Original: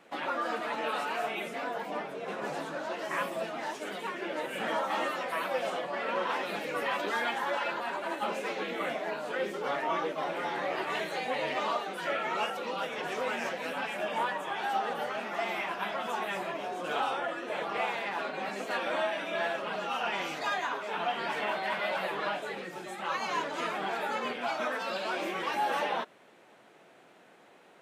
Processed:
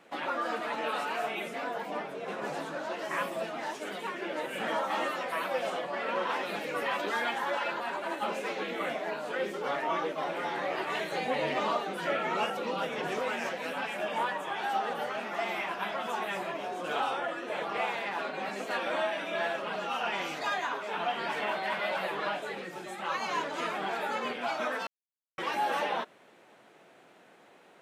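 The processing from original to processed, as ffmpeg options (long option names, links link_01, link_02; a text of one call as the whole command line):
ffmpeg -i in.wav -filter_complex "[0:a]asettb=1/sr,asplit=3[link_01][link_02][link_03];[link_01]atrim=end=11.124[link_04];[link_02]atrim=start=11.12:end=13.19,asetpts=PTS-STARTPTS,afade=type=in:duration=0.004:curve=qsin,afade=type=out:start_time=2.066:duration=0.004:curve=qsin,lowshelf=frequency=360:gain=7.5[link_05];[link_03]atrim=start=13.186[link_06];[link_04][link_05]acrossfade=duration=0.004:curve1=hsin:curve2=qsin[link_07];[link_07][link_06]acrossfade=duration=0.004:curve1=qsin:curve2=hsin,asplit=3[link_08][link_09][link_10];[link_08]atrim=end=24.87,asetpts=PTS-STARTPTS,afade=type=out:start_time=24.866:duration=0.004:curve=hsin[link_11];[link_09]atrim=start=24.87:end=25.38,asetpts=PTS-STARTPTS,volume=0[link_12];[link_10]atrim=start=25.38,asetpts=PTS-STARTPTS,afade=type=in:duration=0.004:curve=hsin[link_13];[link_11][link_12][link_13]concat=n=3:v=0:a=1" out.wav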